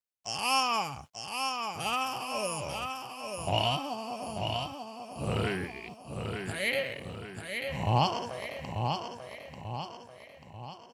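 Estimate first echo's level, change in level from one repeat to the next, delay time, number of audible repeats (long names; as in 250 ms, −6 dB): −5.5 dB, −6.5 dB, 890 ms, 5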